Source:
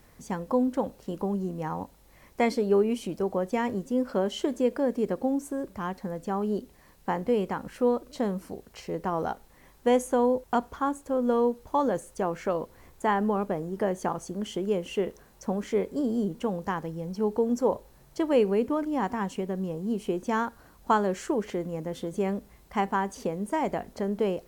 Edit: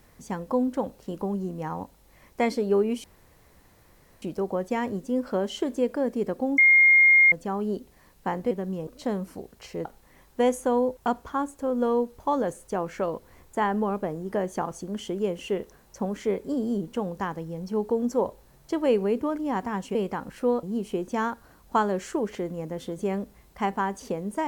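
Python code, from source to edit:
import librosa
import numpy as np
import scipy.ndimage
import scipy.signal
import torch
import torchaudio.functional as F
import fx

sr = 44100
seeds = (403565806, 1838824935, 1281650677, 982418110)

y = fx.edit(x, sr, fx.insert_room_tone(at_s=3.04, length_s=1.18),
    fx.bleep(start_s=5.4, length_s=0.74, hz=2130.0, db=-13.0),
    fx.swap(start_s=7.33, length_s=0.68, other_s=19.42, other_length_s=0.36),
    fx.cut(start_s=8.99, length_s=0.33), tone=tone)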